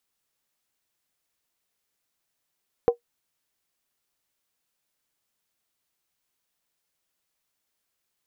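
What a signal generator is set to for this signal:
struck skin, lowest mode 475 Hz, decay 0.11 s, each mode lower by 11.5 dB, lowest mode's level −10 dB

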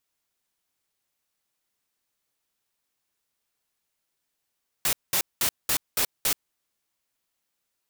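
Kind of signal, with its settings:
noise bursts white, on 0.08 s, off 0.20 s, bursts 6, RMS −23.5 dBFS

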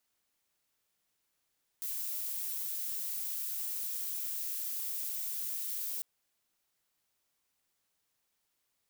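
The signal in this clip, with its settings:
noise violet, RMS −37 dBFS 4.20 s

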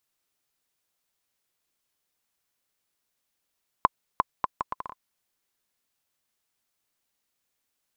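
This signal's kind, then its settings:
bouncing ball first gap 0.35 s, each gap 0.69, 1,030 Hz, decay 25 ms −4.5 dBFS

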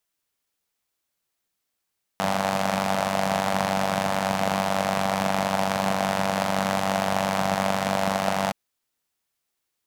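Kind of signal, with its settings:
pulse-train model of a four-cylinder engine, steady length 6.32 s, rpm 2,900, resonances 190/670 Hz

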